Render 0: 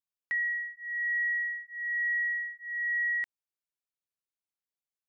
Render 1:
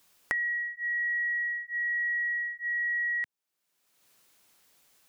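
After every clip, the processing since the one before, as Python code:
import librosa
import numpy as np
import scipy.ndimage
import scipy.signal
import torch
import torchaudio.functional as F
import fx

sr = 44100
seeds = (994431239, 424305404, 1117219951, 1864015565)

y = fx.band_squash(x, sr, depth_pct=100)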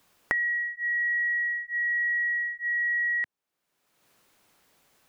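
y = fx.high_shelf(x, sr, hz=2600.0, db=-10.0)
y = y * librosa.db_to_amplitude(6.5)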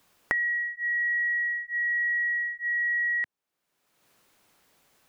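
y = x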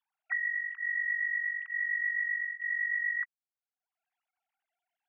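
y = fx.sine_speech(x, sr)
y = y * librosa.db_to_amplitude(-5.0)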